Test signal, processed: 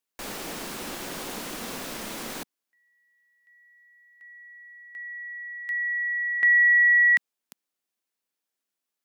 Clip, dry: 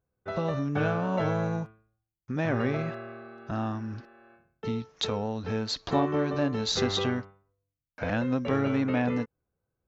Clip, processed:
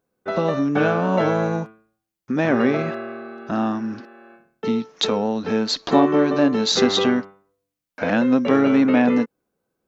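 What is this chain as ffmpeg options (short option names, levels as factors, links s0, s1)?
-af "lowshelf=f=150:t=q:w=1.5:g=-13,volume=2.66"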